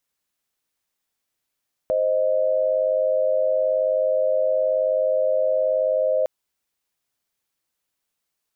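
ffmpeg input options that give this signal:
-f lavfi -i "aevalsrc='0.0944*(sin(2*PI*523.25*t)+sin(2*PI*622.25*t))':d=4.36:s=44100"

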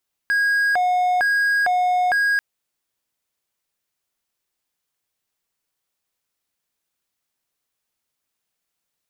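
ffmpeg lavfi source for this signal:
-f lavfi -i "aevalsrc='0.2*(1-4*abs(mod((1182.5*t+457.5/1.1*(0.5-abs(mod(1.1*t,1)-0.5)))+0.25,1)-0.5))':d=2.09:s=44100"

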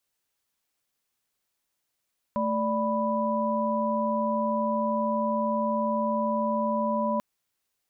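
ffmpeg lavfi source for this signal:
-f lavfi -i "aevalsrc='0.0398*(sin(2*PI*220*t)+sin(2*PI*587.33*t)+sin(2*PI*987.77*t))':d=4.84:s=44100"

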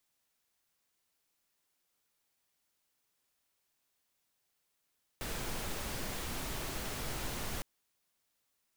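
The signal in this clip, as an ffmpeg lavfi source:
-f lavfi -i "anoisesrc=c=pink:a=0.061:d=2.41:r=44100:seed=1"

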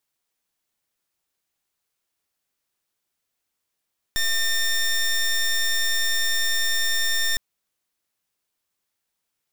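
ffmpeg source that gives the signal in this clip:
-f lavfi -i "aevalsrc='0.0841*(2*lt(mod(1810*t,1),0.15)-1)':d=3.21:s=44100"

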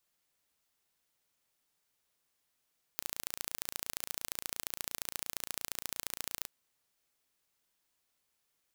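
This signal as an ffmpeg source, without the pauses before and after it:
-f lavfi -i "aevalsrc='0.422*eq(mod(n,1542),0)*(0.5+0.5*eq(mod(n,3084),0))':d=3.47:s=44100"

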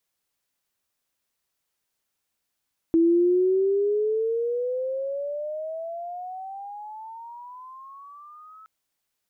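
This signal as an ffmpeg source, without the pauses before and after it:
-f lavfi -i "aevalsrc='pow(10,(-15-29.5*t/5.72)/20)*sin(2*PI*327*5.72/(24*log(2)/12)*(exp(24*log(2)/12*t/5.72)-1))':d=5.72:s=44100"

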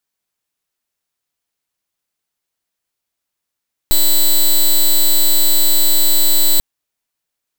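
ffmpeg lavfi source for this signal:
-f lavfi -i "aevalsrc='0.316*(2*lt(mod(3980*t,1),0.07)-1)':d=2.69:s=44100"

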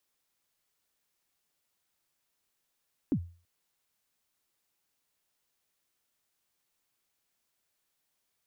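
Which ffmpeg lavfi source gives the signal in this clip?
-f lavfi -i "aevalsrc='0.0891*pow(10,-3*t/0.38)*sin(2*PI*(330*0.072/log(86/330)*(exp(log(86/330)*min(t,0.072)/0.072)-1)+86*max(t-0.072,0)))':d=0.33:s=44100"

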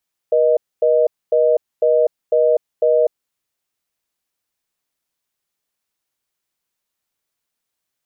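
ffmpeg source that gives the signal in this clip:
-f lavfi -i "aevalsrc='0.2*(sin(2*PI*480*t)+sin(2*PI*620*t))*clip(min(mod(t,0.5),0.25-mod(t,0.5))/0.005,0,1)':d=2.81:s=44100"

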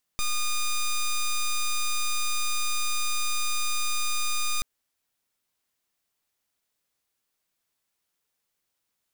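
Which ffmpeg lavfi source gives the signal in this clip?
-f lavfi -i "aevalsrc='0.0562*(2*lt(mod(1220*t,1),0.08)-1)':d=4.43:s=44100"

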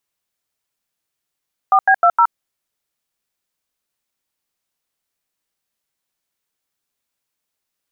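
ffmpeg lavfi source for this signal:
-f lavfi -i "aevalsrc='0.282*clip(min(mod(t,0.155),0.07-mod(t,0.155))/0.002,0,1)*(eq(floor(t/0.155),0)*(sin(2*PI*770*mod(t,0.155))+sin(2*PI*1209*mod(t,0.155)))+eq(floor(t/0.155),1)*(sin(2*PI*770*mod(t,0.155))+sin(2*PI*1633*mod(t,0.155)))+eq(floor(t/0.155),2)*(sin(2*PI*697*mod(t,0.155))+sin(2*PI*1336*mod(t,0.155)))+eq(floor(t/0.155),3)*(sin(2*PI*941*mod(t,0.155))+sin(2*PI*1336*mod(t,0.155))))':d=0.62:s=44100"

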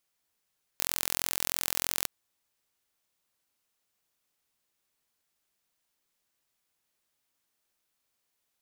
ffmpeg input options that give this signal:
-f lavfi -i "aevalsrc='0.794*eq(mod(n,1023),0)':d=1.26:s=44100"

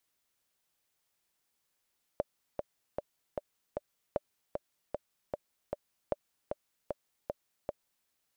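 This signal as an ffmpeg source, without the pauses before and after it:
-f lavfi -i "aevalsrc='pow(10,(-16.5-4.5*gte(mod(t,5*60/153),60/153))/20)*sin(2*PI*587*mod(t,60/153))*exp(-6.91*mod(t,60/153)/0.03)':d=5.88:s=44100"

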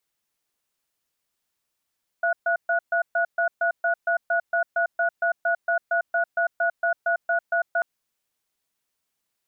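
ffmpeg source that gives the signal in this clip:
-f lavfi -i "aevalsrc='0.0794*(sin(2*PI*681*t)+sin(2*PI*1460*t))*clip(min(mod(t,0.23),0.1-mod(t,0.23))/0.005,0,1)':d=5.59:s=44100"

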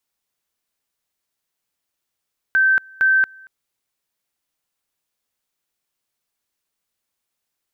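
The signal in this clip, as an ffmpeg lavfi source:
-f lavfi -i "aevalsrc='pow(10,(-12-28*gte(mod(t,0.46),0.23))/20)*sin(2*PI*1550*t)':d=0.92:s=44100"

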